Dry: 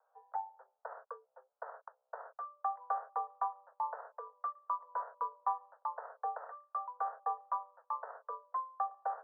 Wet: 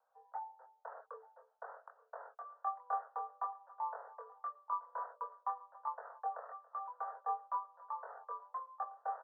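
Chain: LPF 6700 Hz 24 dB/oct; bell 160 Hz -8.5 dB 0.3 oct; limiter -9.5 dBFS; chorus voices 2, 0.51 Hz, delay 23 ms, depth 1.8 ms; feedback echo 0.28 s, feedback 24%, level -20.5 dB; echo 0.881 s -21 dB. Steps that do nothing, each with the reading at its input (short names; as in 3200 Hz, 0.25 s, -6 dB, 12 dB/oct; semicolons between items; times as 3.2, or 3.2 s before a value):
LPF 6700 Hz: input band ends at 1600 Hz; bell 160 Hz: input band starts at 430 Hz; limiter -9.5 dBFS: input peak -21.5 dBFS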